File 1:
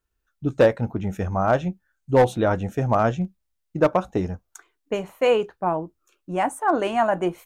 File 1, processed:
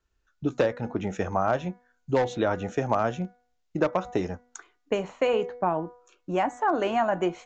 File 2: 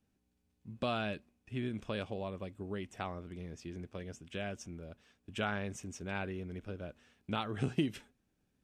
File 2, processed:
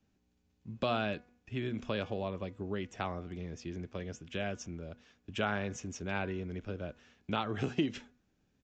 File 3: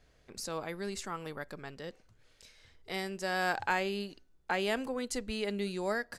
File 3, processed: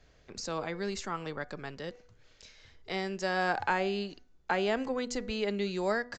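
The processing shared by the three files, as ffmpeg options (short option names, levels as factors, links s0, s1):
-filter_complex "[0:a]aresample=16000,aresample=44100,bandreject=f=244.3:t=h:w=4,bandreject=f=488.6:t=h:w=4,bandreject=f=732.9:t=h:w=4,bandreject=f=977.2:t=h:w=4,bandreject=f=1221.5:t=h:w=4,bandreject=f=1465.8:t=h:w=4,bandreject=f=1710.1:t=h:w=4,bandreject=f=1954.4:t=h:w=4,bandreject=f=2198.7:t=h:w=4,acrossover=split=250|1500[s0][s1][s2];[s0]acompressor=threshold=0.00891:ratio=4[s3];[s1]acompressor=threshold=0.0447:ratio=4[s4];[s2]acompressor=threshold=0.01:ratio=4[s5];[s3][s4][s5]amix=inputs=3:normalize=0,volume=1.5"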